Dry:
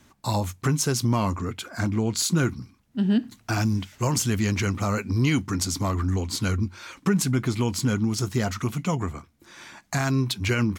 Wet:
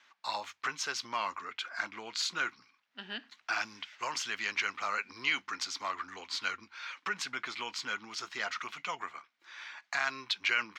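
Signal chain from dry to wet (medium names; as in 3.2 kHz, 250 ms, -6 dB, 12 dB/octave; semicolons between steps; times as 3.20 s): high-pass 1.5 kHz 12 dB/octave; distance through air 220 m; trim +4 dB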